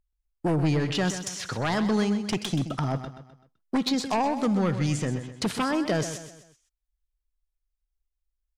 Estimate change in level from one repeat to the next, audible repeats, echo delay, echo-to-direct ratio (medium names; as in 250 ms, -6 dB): -7.5 dB, 4, 128 ms, -9.5 dB